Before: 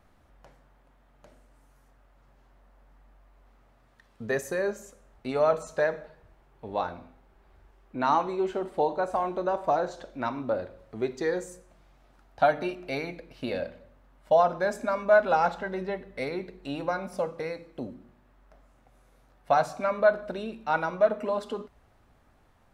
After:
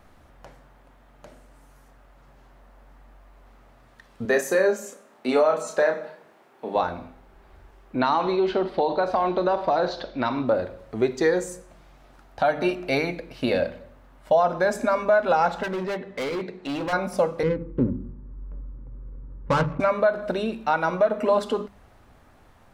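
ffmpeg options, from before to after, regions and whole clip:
ffmpeg -i in.wav -filter_complex "[0:a]asettb=1/sr,asplit=3[link_01][link_02][link_03];[link_01]atrim=end=4.254[link_04];[link_02]atrim=start=4.25:end=6.76,asetpts=PTS-STARTPTS,afade=type=in:duration=0.004:curve=qsin,afade=type=out:start_time=2.506:duration=0.004:curve=qsin,highpass=frequency=200:width=0.5412,highpass=frequency=200:width=1.3066,asplit=2[link_05][link_06];[link_06]adelay=32,volume=-5dB[link_07];[link_05][link_07]amix=inputs=2:normalize=0,atrim=end_sample=110691[link_08];[link_03]atrim=start=6.756[link_09];[link_04][link_08]acrossfade=duration=0.004:curve1=hsin:curve2=qsin[link_10];[link_10][link_09]acrossfade=duration=0.004:curve1=qsin:curve2=hsin,asettb=1/sr,asplit=3[link_11][link_12][link_13];[link_11]atrim=end=8.014[link_14];[link_12]atrim=start=8.01:end=10.47,asetpts=PTS-STARTPTS,afade=type=in:duration=0.004:curve=qsin,afade=type=out:start_time=2.456:duration=0.004:curve=qsin,highshelf=frequency=6000:width_type=q:width=3:gain=-11,acompressor=threshold=-26dB:ratio=4:attack=3.2:release=140:knee=1:detection=peak[link_15];[link_13]atrim=start=10.466[link_16];[link_14][link_15]acrossfade=duration=0.004:curve1=hsin:curve2=qsin[link_17];[link_17][link_16]acrossfade=duration=0.004:curve1=qsin:curve2=hsin,asettb=1/sr,asplit=3[link_18][link_19][link_20];[link_18]atrim=end=15.634[link_21];[link_19]atrim=start=15.63:end=16.93,asetpts=PTS-STARTPTS,afade=type=in:duration=0.004:curve=qsin,afade=type=out:start_time=1.296:duration=0.004:curve=qsin,highpass=120,lowpass=6200,asoftclip=type=hard:threshold=-34dB[link_22];[link_20]atrim=start=16.926[link_23];[link_21][link_22]acrossfade=duration=0.004:curve1=hsin:curve2=qsin[link_24];[link_24][link_23]acrossfade=duration=0.004:curve1=qsin:curve2=hsin,asettb=1/sr,asplit=3[link_25][link_26][link_27];[link_25]atrim=end=17.434[link_28];[link_26]atrim=start=17.43:end=19.8,asetpts=PTS-STARTPTS,afade=type=in:duration=0.004:curve=qsin,afade=type=out:start_time=2.366:duration=0.004:curve=qsin,aemphasis=mode=reproduction:type=riaa,adynamicsmooth=sensitivity=3:basefreq=880,asuperstop=centerf=700:order=4:qfactor=2.2[link_29];[link_27]atrim=start=19.796[link_30];[link_28][link_29]acrossfade=duration=0.004:curve1=hsin:curve2=qsin[link_31];[link_31][link_30]acrossfade=duration=0.004:curve1=qsin:curve2=hsin,bandreject=frequency=50:width_type=h:width=6,bandreject=frequency=100:width_type=h:width=6,bandreject=frequency=150:width_type=h:width=6,bandreject=frequency=200:width_type=h:width=6,alimiter=limit=-19.5dB:level=0:latency=1:release=184,volume=8.5dB" out.wav

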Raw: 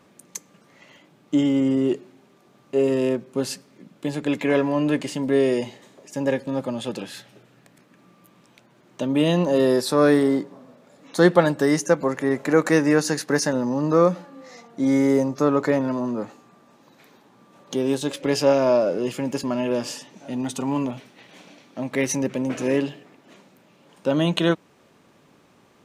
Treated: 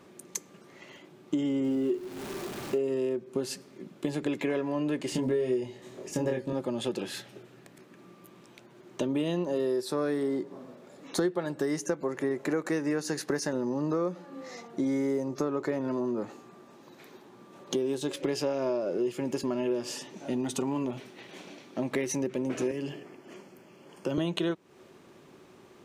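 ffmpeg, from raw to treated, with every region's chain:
ffmpeg -i in.wav -filter_complex "[0:a]asettb=1/sr,asplit=3[link_01][link_02][link_03];[link_01]atrim=end=1.644[link_04];[link_02]atrim=start=1.64:end=2.78,asetpts=PTS-STARTPTS,afade=type=in:duration=0.004:curve=qsin,afade=type=out:start_time=1.136:duration=0.004:curve=qsin,aeval=exprs='val(0)+0.5*0.0178*sgn(val(0))':channel_layout=same,asplit=2[link_05][link_06];[link_06]adelay=41,volume=-11dB[link_07];[link_05][link_07]amix=inputs=2:normalize=0,atrim=end_sample=50274[link_08];[link_03]atrim=start=2.776[link_09];[link_04][link_08]acrossfade=duration=0.004:curve1=hsin:curve2=qsin[link_10];[link_10][link_09]acrossfade=duration=0.004:curve1=qsin:curve2=hsin,asettb=1/sr,asplit=3[link_11][link_12][link_13];[link_11]atrim=end=5.124[link_14];[link_12]atrim=start=5.12:end=6.53,asetpts=PTS-STARTPTS,afade=type=in:duration=0.004:curve=qsin,afade=type=out:start_time=1.406:duration=0.004:curve=qsin,lowshelf=frequency=120:gain=11,asplit=2[link_15][link_16];[link_16]adelay=24,volume=-2.5dB[link_17];[link_15][link_17]amix=inputs=2:normalize=0,atrim=end_sample=62181[link_18];[link_13]atrim=start=6.526[link_19];[link_14][link_18]acrossfade=duration=0.004:curve1=hsin:curve2=qsin[link_20];[link_20][link_19]acrossfade=duration=0.004:curve1=qsin:curve2=hsin,asettb=1/sr,asplit=3[link_21][link_22][link_23];[link_21]atrim=end=22.714[link_24];[link_22]atrim=start=22.71:end=24.18,asetpts=PTS-STARTPTS,afade=type=in:duration=0.004:curve=qsin,afade=type=out:start_time=1.466:duration=0.004:curve=qsin,acrossover=split=180|3000[link_25][link_26][link_27];[link_26]acompressor=threshold=-30dB:ratio=2.5:attack=3.2:release=140:knee=2.83:detection=peak[link_28];[link_25][link_28][link_27]amix=inputs=3:normalize=0,asuperstop=centerf=3800:order=4:qfactor=4.8[link_29];[link_23]atrim=start=24.176[link_30];[link_24][link_29]acrossfade=duration=0.004:curve1=hsin:curve2=qsin[link_31];[link_31][link_30]acrossfade=duration=0.004:curve1=qsin:curve2=hsin,equalizer=frequency=370:width=6.3:gain=11,acompressor=threshold=-27dB:ratio=6" out.wav

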